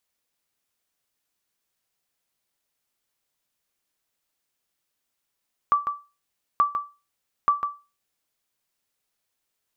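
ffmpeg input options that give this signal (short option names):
-f lavfi -i "aevalsrc='0.266*(sin(2*PI*1160*mod(t,0.88))*exp(-6.91*mod(t,0.88)/0.29)+0.398*sin(2*PI*1160*max(mod(t,0.88)-0.15,0))*exp(-6.91*max(mod(t,0.88)-0.15,0)/0.29))':d=2.64:s=44100"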